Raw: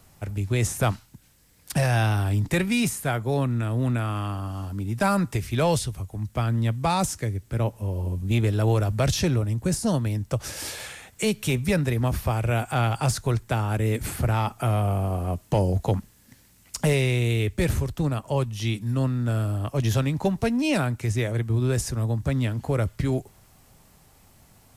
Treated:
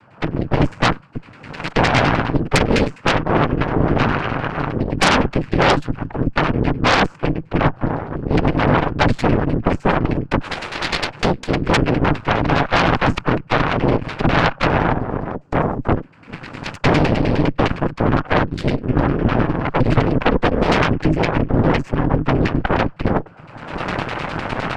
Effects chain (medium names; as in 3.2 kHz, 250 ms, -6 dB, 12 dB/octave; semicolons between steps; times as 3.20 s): recorder AGC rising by 40 dB/s; 14.92–15.96 s: high-order bell 1.6 kHz -10.5 dB 2.6 oct; in parallel at +2 dB: compression, threshold -30 dBFS, peak gain reduction 12 dB; on the sum: LFO low-pass saw down 9.8 Hz 800–2000 Hz; noise-vocoded speech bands 8; Chebyshev shaper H 8 -8 dB, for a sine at -3.5 dBFS; trim -1 dB